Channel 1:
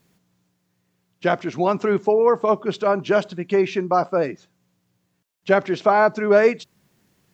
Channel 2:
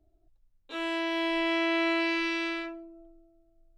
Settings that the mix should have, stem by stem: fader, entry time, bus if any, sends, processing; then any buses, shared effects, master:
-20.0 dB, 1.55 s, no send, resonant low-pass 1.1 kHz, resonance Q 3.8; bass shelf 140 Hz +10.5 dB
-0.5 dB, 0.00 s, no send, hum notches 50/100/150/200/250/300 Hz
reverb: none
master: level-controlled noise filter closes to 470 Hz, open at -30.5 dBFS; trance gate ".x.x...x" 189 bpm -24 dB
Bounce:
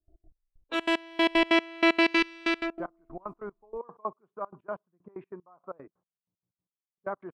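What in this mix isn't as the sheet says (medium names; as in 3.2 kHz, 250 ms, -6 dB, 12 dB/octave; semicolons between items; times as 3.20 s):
stem 1: missing bass shelf 140 Hz +10.5 dB; stem 2 -0.5 dB -> +7.5 dB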